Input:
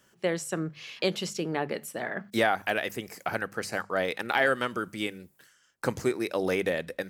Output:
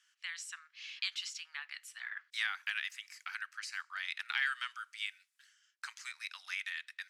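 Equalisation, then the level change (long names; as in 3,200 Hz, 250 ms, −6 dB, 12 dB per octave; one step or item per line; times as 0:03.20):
Bessel high-pass filter 2,300 Hz, order 8
high-frequency loss of the air 78 metres
0.0 dB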